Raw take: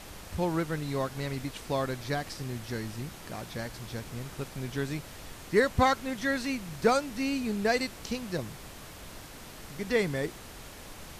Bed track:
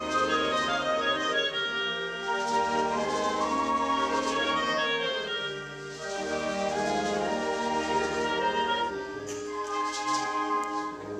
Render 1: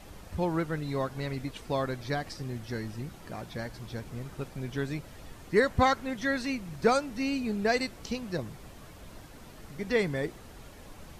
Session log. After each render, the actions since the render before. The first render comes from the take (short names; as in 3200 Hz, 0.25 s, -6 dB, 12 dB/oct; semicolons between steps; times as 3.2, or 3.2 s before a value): denoiser 8 dB, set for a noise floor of -46 dBFS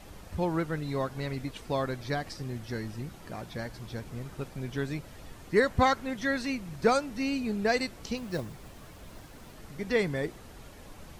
8.17–9.56 block floating point 5-bit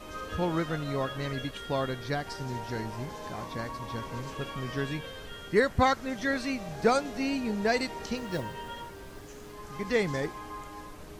add bed track -13.5 dB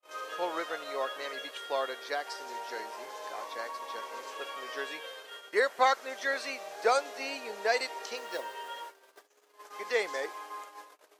gate -42 dBFS, range -41 dB; HPF 460 Hz 24 dB/oct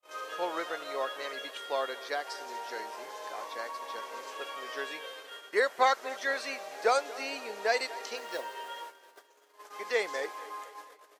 feedback echo 0.237 s, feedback 54%, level -19.5 dB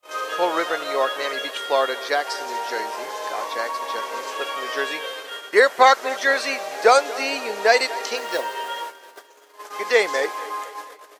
gain +12 dB; limiter -2 dBFS, peak gain reduction 2 dB